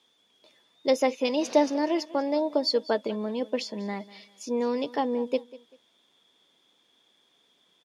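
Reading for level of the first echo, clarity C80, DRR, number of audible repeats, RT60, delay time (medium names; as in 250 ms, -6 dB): -19.5 dB, no reverb, no reverb, 2, no reverb, 195 ms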